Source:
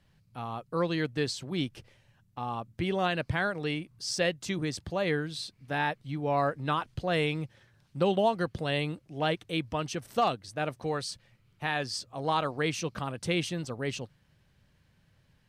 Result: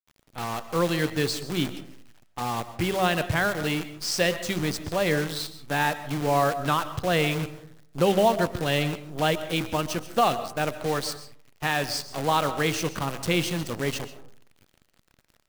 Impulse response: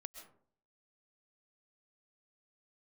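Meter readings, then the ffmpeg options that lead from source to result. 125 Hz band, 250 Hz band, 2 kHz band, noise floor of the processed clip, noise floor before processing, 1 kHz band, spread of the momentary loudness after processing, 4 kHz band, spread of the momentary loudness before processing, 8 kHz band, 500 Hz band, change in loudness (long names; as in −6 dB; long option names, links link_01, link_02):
+4.5 dB, +4.5 dB, +5.5 dB, −64 dBFS, −67 dBFS, +5.5 dB, 9 LU, +5.5 dB, 9 LU, +7.5 dB, +5.0 dB, +5.0 dB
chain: -filter_complex "[0:a]bandreject=frequency=63.91:width_type=h:width=4,bandreject=frequency=127.82:width_type=h:width=4,bandreject=frequency=191.73:width_type=h:width=4,bandreject=frequency=255.64:width_type=h:width=4,bandreject=frequency=319.55:width_type=h:width=4,bandreject=frequency=383.46:width_type=h:width=4,bandreject=frequency=447.37:width_type=h:width=4,bandreject=frequency=511.28:width_type=h:width=4,acrusher=bits=7:dc=4:mix=0:aa=0.000001,asplit=2[link_01][link_02];[1:a]atrim=start_sample=2205[link_03];[link_02][link_03]afir=irnorm=-1:irlink=0,volume=5.5dB[link_04];[link_01][link_04]amix=inputs=2:normalize=0,volume=-1dB"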